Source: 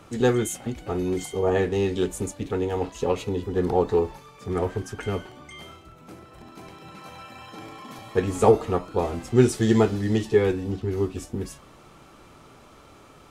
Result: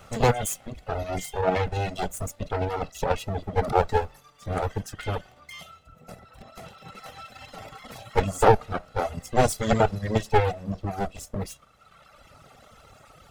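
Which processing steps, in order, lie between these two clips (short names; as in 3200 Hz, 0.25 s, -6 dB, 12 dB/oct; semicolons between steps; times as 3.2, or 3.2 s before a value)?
minimum comb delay 1.5 ms; reverb removal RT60 1.9 s; in parallel at -2 dB: level quantiser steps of 12 dB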